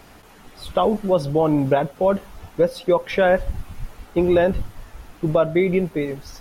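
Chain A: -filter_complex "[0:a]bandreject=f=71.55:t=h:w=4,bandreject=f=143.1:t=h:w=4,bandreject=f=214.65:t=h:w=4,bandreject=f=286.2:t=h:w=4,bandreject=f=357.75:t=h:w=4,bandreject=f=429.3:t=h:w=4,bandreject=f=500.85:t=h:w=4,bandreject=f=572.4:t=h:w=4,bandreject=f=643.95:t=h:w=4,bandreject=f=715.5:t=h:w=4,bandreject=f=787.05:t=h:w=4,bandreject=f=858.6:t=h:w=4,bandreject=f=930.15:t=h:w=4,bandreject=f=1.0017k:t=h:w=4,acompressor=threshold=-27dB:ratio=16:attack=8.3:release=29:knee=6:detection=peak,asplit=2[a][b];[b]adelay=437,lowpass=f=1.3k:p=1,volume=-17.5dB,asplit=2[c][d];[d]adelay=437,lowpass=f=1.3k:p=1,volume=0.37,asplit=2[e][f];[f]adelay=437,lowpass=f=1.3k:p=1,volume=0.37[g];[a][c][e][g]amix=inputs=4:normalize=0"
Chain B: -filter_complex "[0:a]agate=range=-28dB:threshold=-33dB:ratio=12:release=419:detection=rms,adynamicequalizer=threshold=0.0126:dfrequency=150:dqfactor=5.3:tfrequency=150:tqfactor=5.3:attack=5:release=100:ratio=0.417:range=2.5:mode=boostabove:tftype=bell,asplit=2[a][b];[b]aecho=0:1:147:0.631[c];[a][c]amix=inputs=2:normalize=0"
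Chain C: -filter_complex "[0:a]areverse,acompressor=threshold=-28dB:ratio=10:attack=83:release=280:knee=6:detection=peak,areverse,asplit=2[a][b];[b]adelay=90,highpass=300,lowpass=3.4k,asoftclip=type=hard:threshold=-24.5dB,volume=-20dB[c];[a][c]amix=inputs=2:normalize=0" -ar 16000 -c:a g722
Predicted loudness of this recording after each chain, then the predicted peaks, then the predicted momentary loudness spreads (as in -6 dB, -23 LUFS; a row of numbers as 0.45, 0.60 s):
-31.0, -19.0, -30.0 LUFS; -15.0, -4.5, -14.5 dBFS; 11, 11, 14 LU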